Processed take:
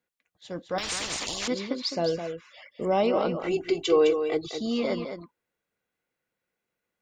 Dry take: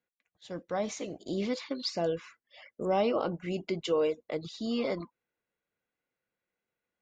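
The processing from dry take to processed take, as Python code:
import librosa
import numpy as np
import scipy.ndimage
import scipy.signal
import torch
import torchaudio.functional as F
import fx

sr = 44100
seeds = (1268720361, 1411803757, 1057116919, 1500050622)

y = fx.comb(x, sr, ms=2.6, depth=0.97, at=(3.42, 4.59))
y = y + 10.0 ** (-8.0 / 20.0) * np.pad(y, (int(210 * sr / 1000.0), 0))[:len(y)]
y = fx.spectral_comp(y, sr, ratio=10.0, at=(0.78, 1.48))
y = F.gain(torch.from_numpy(y), 3.5).numpy()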